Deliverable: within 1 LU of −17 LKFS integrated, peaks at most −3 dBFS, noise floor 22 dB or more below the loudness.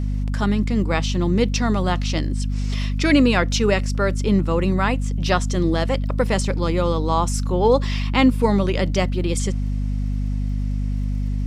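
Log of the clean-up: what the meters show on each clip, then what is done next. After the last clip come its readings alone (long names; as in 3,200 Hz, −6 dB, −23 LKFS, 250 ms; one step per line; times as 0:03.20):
crackle rate 33 per second; mains hum 50 Hz; hum harmonics up to 250 Hz; level of the hum −20 dBFS; integrated loudness −21.0 LKFS; sample peak −4.0 dBFS; target loudness −17.0 LKFS
→ click removal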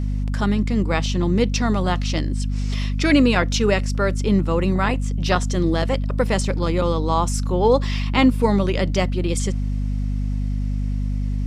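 crackle rate 0 per second; mains hum 50 Hz; hum harmonics up to 250 Hz; level of the hum −20 dBFS
→ mains-hum notches 50/100/150/200/250 Hz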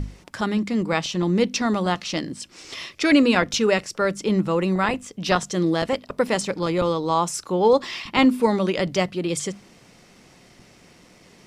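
mains hum none found; integrated loudness −22.0 LKFS; sample peak −5.0 dBFS; target loudness −17.0 LKFS
→ level +5 dB
brickwall limiter −3 dBFS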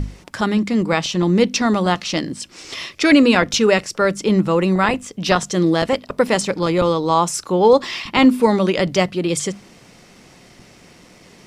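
integrated loudness −17.5 LKFS; sample peak −3.0 dBFS; background noise floor −47 dBFS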